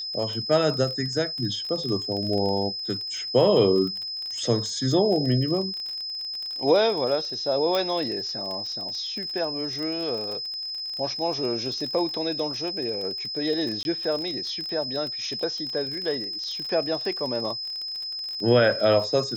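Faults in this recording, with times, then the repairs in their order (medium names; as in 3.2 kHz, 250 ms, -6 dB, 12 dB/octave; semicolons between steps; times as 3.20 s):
crackle 31 per s -30 dBFS
whine 5.1 kHz -30 dBFS
7.75 s: pop -12 dBFS
13.83–13.85 s: dropout 21 ms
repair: de-click; band-stop 5.1 kHz, Q 30; interpolate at 13.83 s, 21 ms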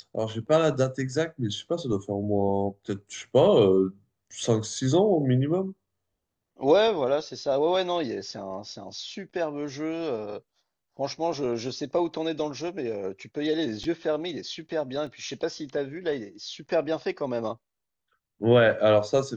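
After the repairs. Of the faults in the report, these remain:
nothing left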